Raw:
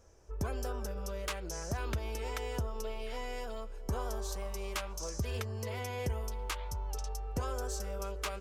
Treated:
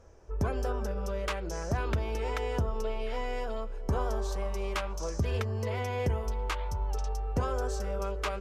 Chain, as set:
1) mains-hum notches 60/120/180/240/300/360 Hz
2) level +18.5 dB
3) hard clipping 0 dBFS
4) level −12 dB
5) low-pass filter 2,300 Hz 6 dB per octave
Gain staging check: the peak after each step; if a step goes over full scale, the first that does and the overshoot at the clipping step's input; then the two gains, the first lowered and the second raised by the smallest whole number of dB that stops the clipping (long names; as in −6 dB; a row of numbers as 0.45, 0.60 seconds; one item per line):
−24.0, −5.5, −5.5, −17.5, −18.5 dBFS
no step passes full scale